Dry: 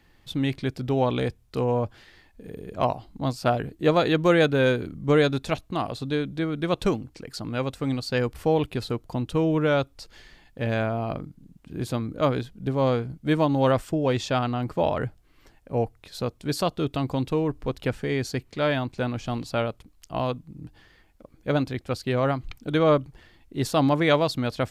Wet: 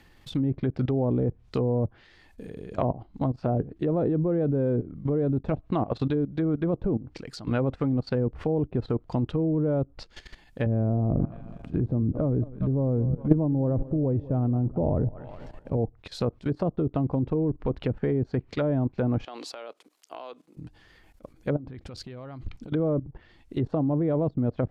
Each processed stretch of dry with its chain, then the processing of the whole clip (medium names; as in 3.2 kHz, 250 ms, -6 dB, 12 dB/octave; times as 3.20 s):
10.66–15.77 s: tilt EQ -2 dB/octave + feedback delay 203 ms, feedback 49%, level -19 dB
19.25–20.57 s: high-pass 350 Hz 24 dB/octave + compression 4:1, threshold -34 dBFS
21.56–22.72 s: bass shelf 410 Hz +5.5 dB + compression 16:1, threshold -30 dBFS + expander -48 dBFS
whole clip: low-pass that closes with the level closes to 440 Hz, closed at -21.5 dBFS; level held to a coarse grid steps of 16 dB; trim +8 dB